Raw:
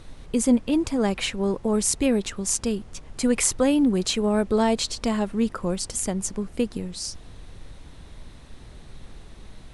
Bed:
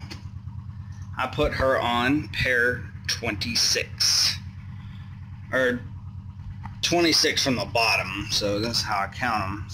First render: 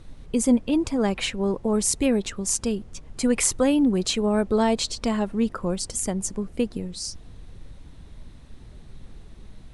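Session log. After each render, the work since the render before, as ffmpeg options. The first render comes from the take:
-af "afftdn=nr=6:nf=-45"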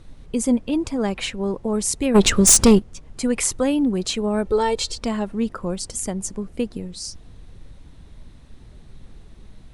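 -filter_complex "[0:a]asplit=3[a][b][c];[a]afade=t=out:st=2.14:d=0.02[d];[b]aeval=exprs='0.473*sin(PI/2*3.98*val(0)/0.473)':c=same,afade=t=in:st=2.14:d=0.02,afade=t=out:st=2.78:d=0.02[e];[c]afade=t=in:st=2.78:d=0.02[f];[d][e][f]amix=inputs=3:normalize=0,asettb=1/sr,asplit=3[g][h][i];[g]atrim=end=4.454[j];[h]atrim=start=4.45:end=4.98,asetpts=PTS-STARTPTS,afade=t=in:d=0.004:c=qsin,afade=t=out:st=0.526:d=0.004:c=qsin,aecho=1:1:2.2:0.65,atrim=end_sample=23373[k];[i]atrim=start=4.976[l];[j][k]acrossfade=d=0.004:c1=hsin:c2=qsin[m];[m][l]acrossfade=d=0.004:c1=qsin:c2=hsin"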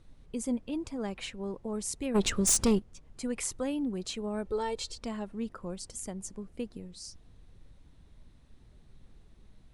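-af "volume=-12.5dB"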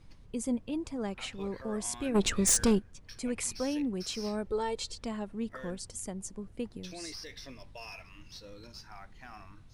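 -filter_complex "[1:a]volume=-24.5dB[a];[0:a][a]amix=inputs=2:normalize=0"

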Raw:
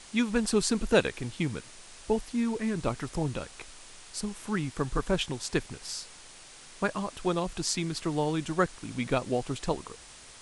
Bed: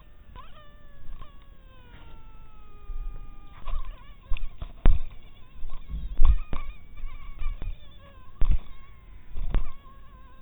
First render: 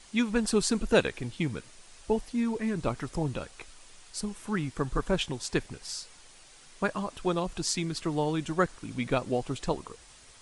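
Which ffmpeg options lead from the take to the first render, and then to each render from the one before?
-af "afftdn=nr=6:nf=-50"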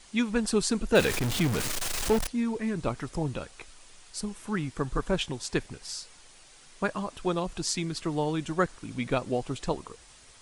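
-filter_complex "[0:a]asettb=1/sr,asplit=3[a][b][c];[a]atrim=end=0.954[d];[b]atrim=start=0.95:end=2.27,asetpts=PTS-STARTPTS,afade=t=in:d=0.004:c=qsin,afade=t=out:st=1.316:d=0.004:c=qsin,aeval=exprs='val(0)+0.5*0.0562*sgn(val(0))':c=same[e];[c]atrim=start=2.266[f];[d][e]acrossfade=d=0.004:c1=hsin:c2=qsin[g];[g][f]acrossfade=d=0.004:c1=qsin:c2=hsin"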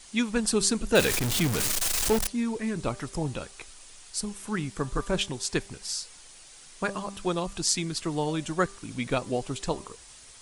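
-af "highshelf=f=4.5k:g=8,bandreject=f=197.8:t=h:w=4,bandreject=f=395.6:t=h:w=4,bandreject=f=593.4:t=h:w=4,bandreject=f=791.2:t=h:w=4,bandreject=f=989:t=h:w=4,bandreject=f=1.1868k:t=h:w=4"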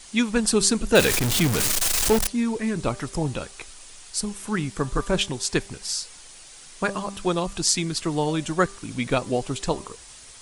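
-af "volume=4.5dB,alimiter=limit=-3dB:level=0:latency=1"

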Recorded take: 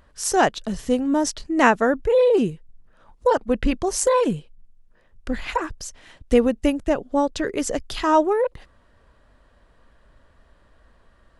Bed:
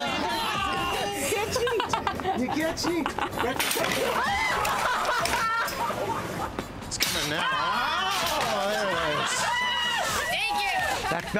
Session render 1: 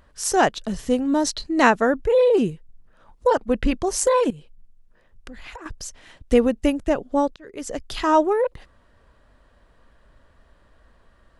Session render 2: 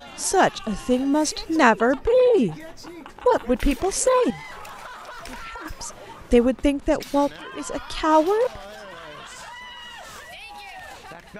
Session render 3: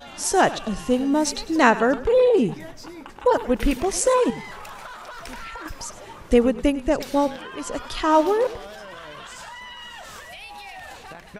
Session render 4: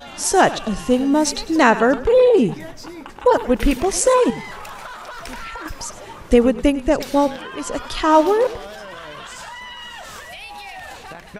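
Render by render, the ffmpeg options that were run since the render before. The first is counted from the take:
-filter_complex "[0:a]asettb=1/sr,asplit=3[a][b][c];[a]atrim=end=1.084[d];[b]atrim=start=1.08:end=1.7,asetpts=PTS-STARTPTS,afade=t=in:d=0.004:c=qsin,afade=t=out:st=0.616:d=0.004:c=qsin,equalizer=f=4.1k:w=6.5:g=13[e];[c]atrim=start=1.696[f];[d][e]acrossfade=d=0.004:c1=hsin:c2=qsin[g];[g][f]acrossfade=d=0.004:c1=qsin:c2=hsin,asettb=1/sr,asplit=3[h][i][j];[h]atrim=end=4.304[k];[i]atrim=start=4.3:end=5.66,asetpts=PTS-STARTPTS,afade=t=in:d=0.004:c=qsin,afade=t=out:st=1.356:d=0.004:c=qsin,acompressor=threshold=-35dB:ratio=10:attack=3.2:release=140:knee=1:detection=peak[l];[j]atrim=start=5.656[m];[k][l]acrossfade=d=0.004:c1=hsin:c2=qsin[n];[n][m]acrossfade=d=0.004:c1=qsin:c2=hsin,asplit=2[o][p];[o]atrim=end=7.36,asetpts=PTS-STARTPTS,afade=t=out:st=7.356:d=0.004:c=hsin[q];[p]atrim=start=7.36,asetpts=PTS-STARTPTS,afade=t=in:d=0.64[r];[q][r]concat=n=2:v=0:a=1"
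-filter_complex "[1:a]volume=-13dB[a];[0:a][a]amix=inputs=2:normalize=0"
-filter_complex "[0:a]asplit=4[a][b][c][d];[b]adelay=101,afreqshift=-32,volume=-16dB[e];[c]adelay=202,afreqshift=-64,volume=-26.2dB[f];[d]adelay=303,afreqshift=-96,volume=-36.3dB[g];[a][e][f][g]amix=inputs=4:normalize=0"
-af "volume=4dB,alimiter=limit=-2dB:level=0:latency=1"

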